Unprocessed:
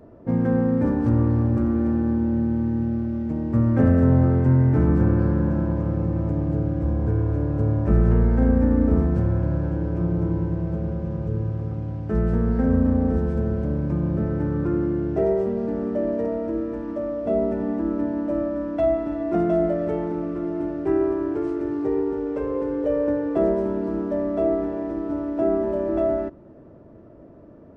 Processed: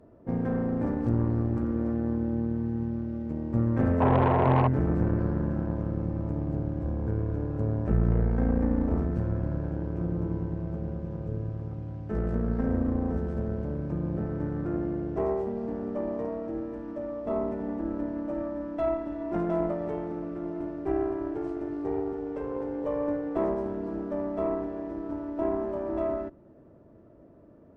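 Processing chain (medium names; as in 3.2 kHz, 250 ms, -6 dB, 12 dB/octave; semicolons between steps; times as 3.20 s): painted sound noise, 4.00–4.68 s, 350–1100 Hz -18 dBFS; Chebyshev shaper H 8 -21 dB, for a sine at -0.5 dBFS; trim -7.5 dB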